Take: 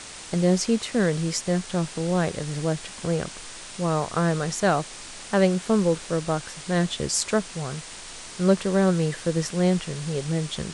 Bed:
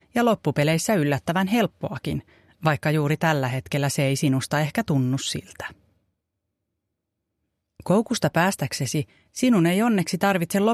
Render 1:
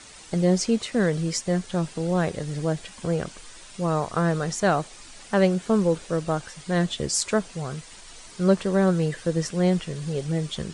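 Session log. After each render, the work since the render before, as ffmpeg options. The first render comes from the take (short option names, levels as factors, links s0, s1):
-af "afftdn=nr=9:nf=-40"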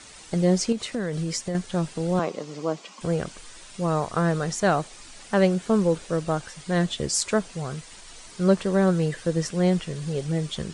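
-filter_complex "[0:a]asettb=1/sr,asplit=3[s0][s1][s2];[s0]atrim=end=0.724[s3];[s1]atrim=start=0.72:end=1.55,asetpts=PTS-STARTPTS,afade=t=in:d=0.004:c=qsin,afade=t=out:st=0.826:d=0.004:c=qsin,acompressor=threshold=0.0631:ratio=4:attack=3.2:release=140:knee=1:detection=peak[s4];[s2]atrim=start=1.546[s5];[s3][s4]acrossfade=d=0.004:c1=hsin:c2=qsin[s6];[s6][s5]acrossfade=d=0.004:c1=qsin:c2=hsin,asettb=1/sr,asplit=3[s7][s8][s9];[s7]atrim=end=2.194[s10];[s8]atrim=start=2.19:end=3.01,asetpts=PTS-STARTPTS,afade=t=in:d=0.004:c=qsin,afade=t=out:st=0.816:d=0.004:c=qsin,highpass=f=210:w=0.5412,highpass=f=210:w=1.3066,equalizer=f=1100:t=q:w=4:g=8,equalizer=f=1700:t=q:w=4:g=-10,equalizer=f=3700:t=q:w=4:g=-4,lowpass=f=6900:w=0.5412,lowpass=f=6900:w=1.3066[s11];[s9]atrim=start=3.006[s12];[s10][s11]acrossfade=d=0.004:c1=hsin:c2=qsin[s13];[s13][s12]acrossfade=d=0.004:c1=qsin:c2=hsin"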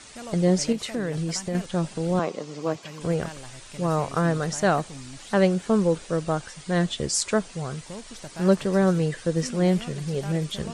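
-filter_complex "[1:a]volume=0.106[s0];[0:a][s0]amix=inputs=2:normalize=0"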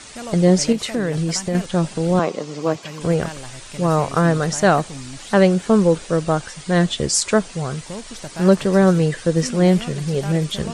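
-af "volume=2.11,alimiter=limit=0.794:level=0:latency=1"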